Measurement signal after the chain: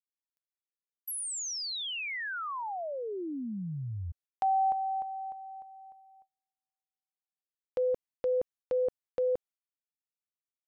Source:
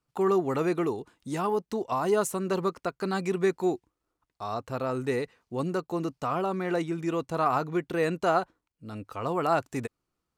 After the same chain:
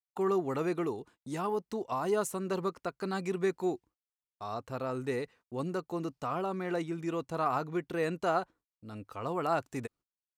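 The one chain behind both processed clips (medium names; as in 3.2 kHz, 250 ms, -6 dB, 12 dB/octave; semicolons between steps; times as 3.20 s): gate -52 dBFS, range -33 dB; trim -5 dB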